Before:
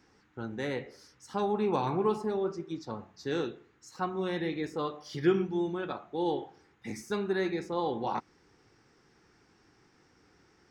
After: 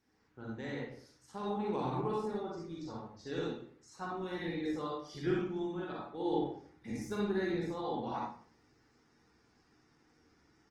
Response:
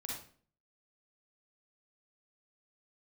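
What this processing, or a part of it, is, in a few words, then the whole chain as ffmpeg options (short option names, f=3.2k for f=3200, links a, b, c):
speakerphone in a meeting room: -filter_complex "[0:a]asplit=3[a][b][c];[a]afade=t=out:st=6.24:d=0.02[d];[b]lowshelf=f=480:g=6,afade=t=in:st=6.24:d=0.02,afade=t=out:st=7.61:d=0.02[e];[c]afade=t=in:st=7.61:d=0.02[f];[d][e][f]amix=inputs=3:normalize=0[g];[1:a]atrim=start_sample=2205[h];[g][h]afir=irnorm=-1:irlink=0,asplit=2[i][j];[j]adelay=100,highpass=300,lowpass=3.4k,asoftclip=type=hard:threshold=-24.5dB,volume=-24dB[k];[i][k]amix=inputs=2:normalize=0,dynaudnorm=f=140:g=3:m=3.5dB,volume=-8dB" -ar 48000 -c:a libopus -b:a 20k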